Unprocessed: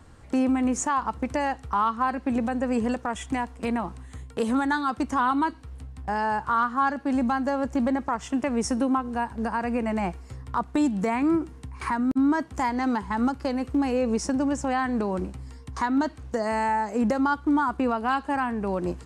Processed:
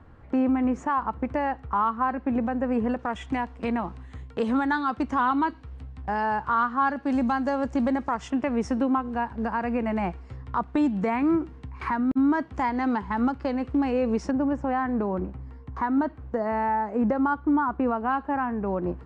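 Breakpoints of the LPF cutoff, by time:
2000 Hz
from 2.99 s 3600 Hz
from 7.03 s 5800 Hz
from 8.3 s 3200 Hz
from 14.31 s 1600 Hz

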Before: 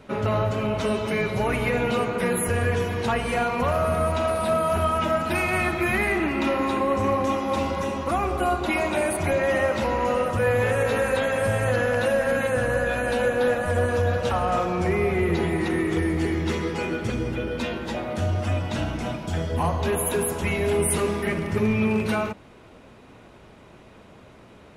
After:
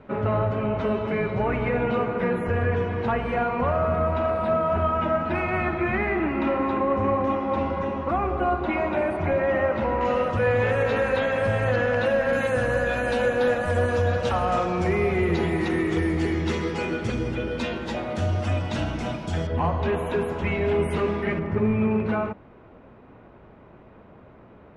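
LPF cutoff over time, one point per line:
1900 Hz
from 10.01 s 4000 Hz
from 12.33 s 7300 Hz
from 19.47 s 2700 Hz
from 21.39 s 1600 Hz

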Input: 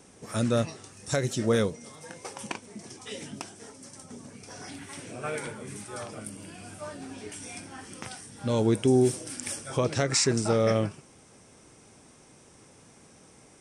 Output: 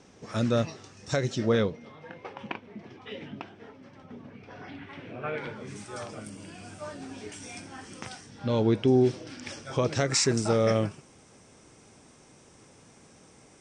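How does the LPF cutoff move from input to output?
LPF 24 dB/oct
1.28 s 6200 Hz
1.94 s 3200 Hz
5.32 s 3200 Hz
5.81 s 7800 Hz
8.09 s 7800 Hz
8.51 s 4800 Hz
9.34 s 4800 Hz
10.17 s 8400 Hz

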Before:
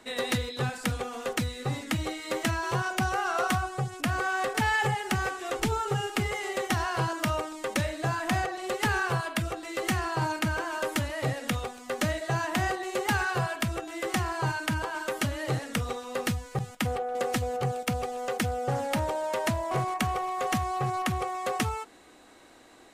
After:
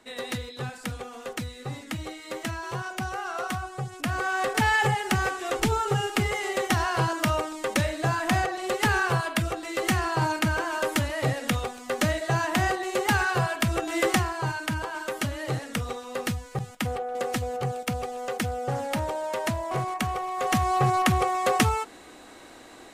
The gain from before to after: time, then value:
3.56 s -4 dB
4.58 s +3.5 dB
13.59 s +3.5 dB
14 s +10 dB
14.33 s 0 dB
20.29 s 0 dB
20.73 s +7 dB

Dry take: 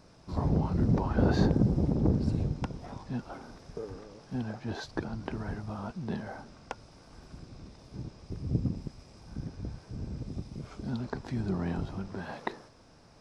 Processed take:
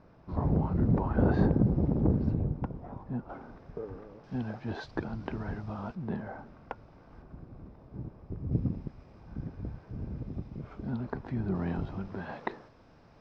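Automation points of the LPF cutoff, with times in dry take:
1900 Hz
from 2.34 s 1200 Hz
from 3.29 s 1900 Hz
from 4.24 s 3400 Hz
from 5.95 s 1900 Hz
from 7.22 s 1300 Hz
from 8.52 s 2100 Hz
from 11.55 s 3000 Hz

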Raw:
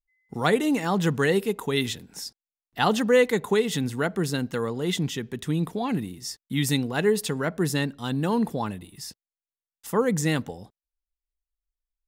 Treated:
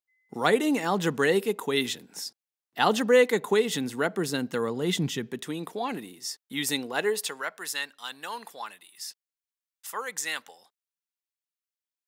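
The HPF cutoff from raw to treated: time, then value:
4.2 s 240 Hz
5.16 s 110 Hz
5.53 s 390 Hz
6.94 s 390 Hz
7.6 s 1200 Hz

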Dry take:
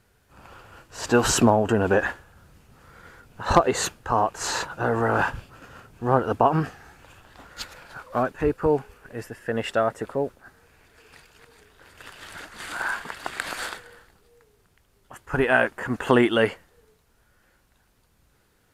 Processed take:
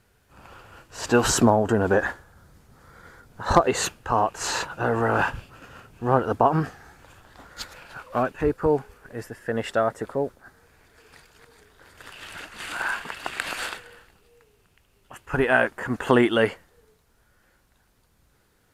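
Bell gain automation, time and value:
bell 2700 Hz 0.34 oct
+1 dB
from 1.3 s -8.5 dB
from 3.67 s +3.5 dB
from 6.25 s -5 dB
from 7.74 s +6 dB
from 8.41 s -4.5 dB
from 12.1 s +7.5 dB
from 15.35 s -1.5 dB

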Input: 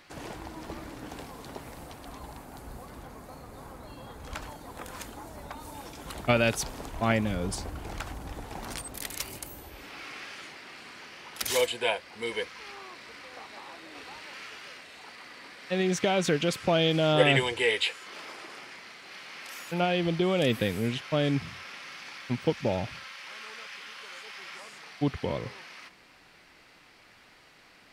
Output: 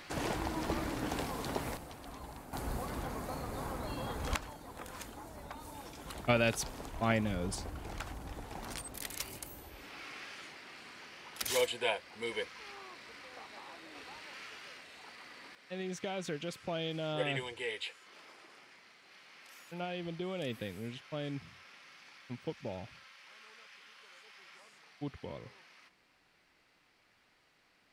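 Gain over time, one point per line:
+5 dB
from 1.77 s -4 dB
from 2.53 s +5.5 dB
from 4.36 s -5 dB
from 15.55 s -13 dB

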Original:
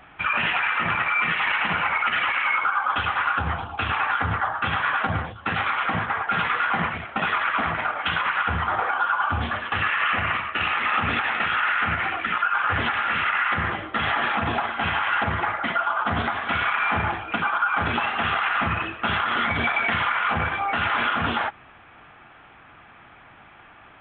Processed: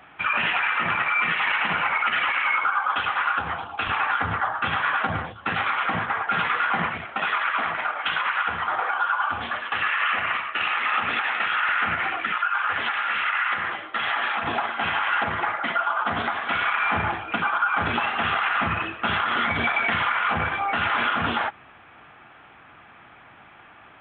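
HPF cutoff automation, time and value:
HPF 6 dB/oct
160 Hz
from 2.8 s 370 Hz
from 3.87 s 140 Hz
from 7.15 s 560 Hz
from 11.69 s 230 Hz
from 12.32 s 860 Hz
from 14.44 s 270 Hz
from 16.86 s 88 Hz

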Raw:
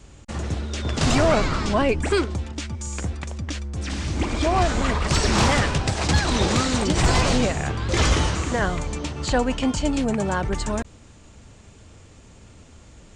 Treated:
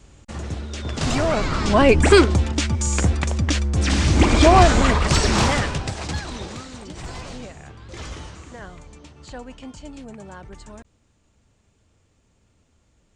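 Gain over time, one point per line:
1.34 s -2.5 dB
2 s +9 dB
4.46 s +9 dB
5.84 s -3.5 dB
6.67 s -15.5 dB

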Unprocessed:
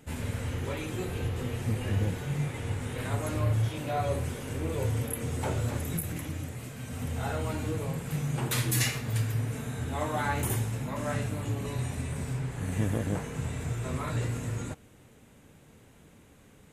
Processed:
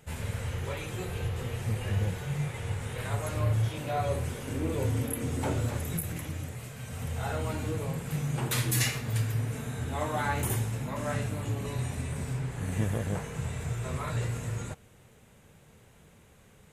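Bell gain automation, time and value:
bell 280 Hz 0.44 oct
-14 dB
from 3.37 s -4.5 dB
from 4.48 s +6 dB
from 5.66 s -5.5 dB
from 6.55 s -13 dB
from 7.31 s -2.5 dB
from 12.84 s -10 dB

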